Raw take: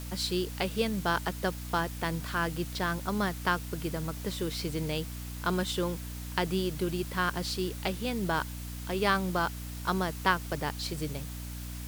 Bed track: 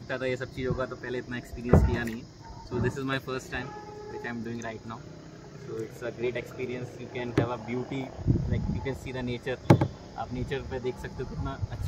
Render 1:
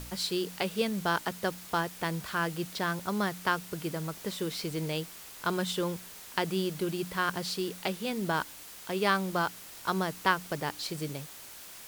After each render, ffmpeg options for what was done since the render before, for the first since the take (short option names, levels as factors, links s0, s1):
-af "bandreject=f=60:t=h:w=4,bandreject=f=120:t=h:w=4,bandreject=f=180:t=h:w=4,bandreject=f=240:t=h:w=4,bandreject=f=300:t=h:w=4"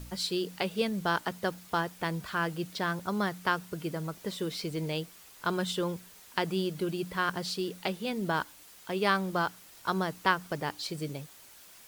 -af "afftdn=nr=7:nf=-47"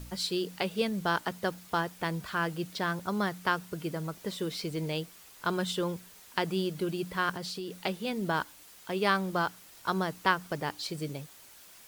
-filter_complex "[0:a]asettb=1/sr,asplit=3[s0][s1][s2];[s0]atrim=end=7.364[s3];[s1]atrim=start=7.36:end=7.77,asetpts=PTS-STARTPTS,afade=t=in:d=0.004:c=qsin,afade=t=out:st=0.406:d=0.004:c=qsin,acompressor=threshold=0.02:ratio=4:attack=3.2:release=140:knee=1:detection=peak[s4];[s2]atrim=start=7.766[s5];[s3][s4]acrossfade=d=0.004:c1=hsin:c2=qsin[s6];[s6][s5]acrossfade=d=0.004:c1=qsin:c2=hsin"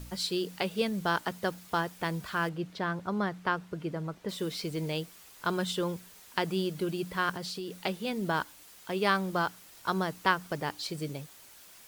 -filter_complex "[0:a]asettb=1/sr,asplit=3[s0][s1][s2];[s0]atrim=end=2.494[s3];[s1]atrim=start=2.49:end=4.29,asetpts=PTS-STARTPTS,afade=t=in:d=0.004:c=qsin,afade=t=out:st=1.796:d=0.004:c=qsin,aemphasis=mode=reproduction:type=75kf[s4];[s2]atrim=start=4.286[s5];[s3][s4]acrossfade=d=0.004:c1=hsin:c2=qsin[s6];[s6][s5]acrossfade=d=0.004:c1=qsin:c2=hsin"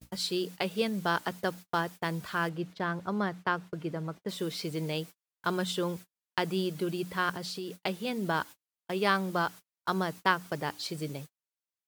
-af "agate=range=0.00631:threshold=0.00794:ratio=16:detection=peak,highpass=77"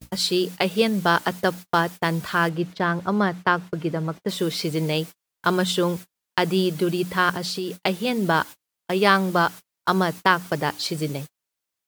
-af "volume=2.99,alimiter=limit=0.708:level=0:latency=1"